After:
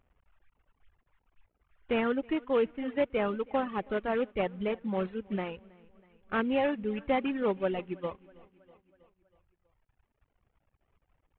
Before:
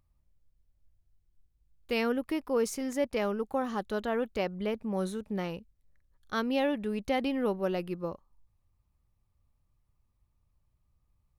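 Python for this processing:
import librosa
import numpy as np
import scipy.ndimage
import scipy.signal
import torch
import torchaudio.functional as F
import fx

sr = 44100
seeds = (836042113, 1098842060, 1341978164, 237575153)

y = fx.cvsd(x, sr, bps=16000)
y = fx.echo_feedback(y, sr, ms=322, feedback_pct=51, wet_db=-14.5)
y = fx.dereverb_blind(y, sr, rt60_s=1.9)
y = y * librosa.db_to_amplitude(2.5)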